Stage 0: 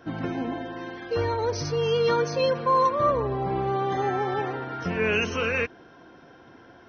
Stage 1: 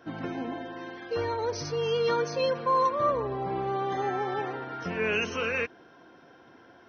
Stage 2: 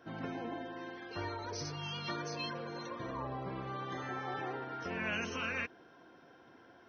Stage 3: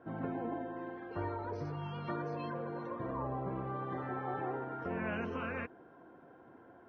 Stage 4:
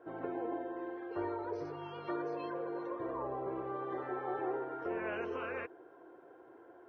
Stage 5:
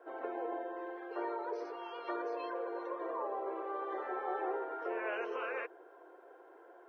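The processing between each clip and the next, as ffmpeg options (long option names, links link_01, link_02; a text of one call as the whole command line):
ffmpeg -i in.wav -af "lowshelf=frequency=120:gain=-9.5,volume=-3dB" out.wav
ffmpeg -i in.wav -af "afftfilt=real='re*lt(hypot(re,im),0.2)':imag='im*lt(hypot(re,im),0.2)':win_size=1024:overlap=0.75,volume=-5dB" out.wav
ffmpeg -i in.wav -af "lowpass=1200,volume=3dB" out.wav
ffmpeg -i in.wav -af "lowshelf=frequency=280:width_type=q:width=3:gain=-8,volume=-1.5dB" out.wav
ffmpeg -i in.wav -af "highpass=frequency=400:width=0.5412,highpass=frequency=400:width=1.3066,volume=2dB" out.wav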